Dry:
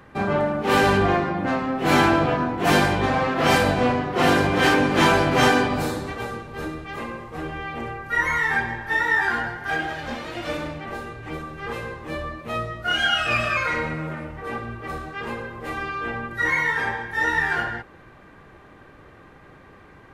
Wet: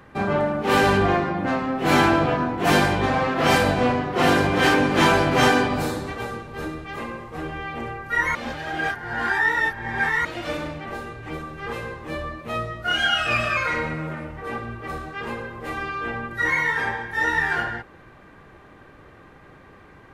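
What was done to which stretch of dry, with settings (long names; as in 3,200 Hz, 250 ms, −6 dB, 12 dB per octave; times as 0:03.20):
0:08.35–0:10.25: reverse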